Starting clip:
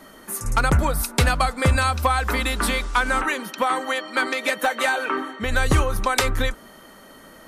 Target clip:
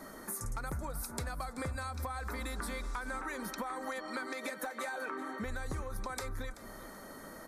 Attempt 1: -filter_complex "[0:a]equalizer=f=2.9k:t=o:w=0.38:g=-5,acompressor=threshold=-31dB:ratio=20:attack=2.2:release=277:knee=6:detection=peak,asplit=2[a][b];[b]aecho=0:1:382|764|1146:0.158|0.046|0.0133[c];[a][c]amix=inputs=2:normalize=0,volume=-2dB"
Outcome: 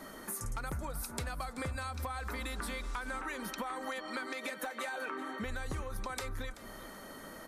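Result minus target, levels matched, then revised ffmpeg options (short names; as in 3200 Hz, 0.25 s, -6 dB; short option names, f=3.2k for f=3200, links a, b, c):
4000 Hz band +2.5 dB
-filter_complex "[0:a]equalizer=f=2.9k:t=o:w=0.38:g=-17,acompressor=threshold=-31dB:ratio=20:attack=2.2:release=277:knee=6:detection=peak,asplit=2[a][b];[b]aecho=0:1:382|764|1146:0.158|0.046|0.0133[c];[a][c]amix=inputs=2:normalize=0,volume=-2dB"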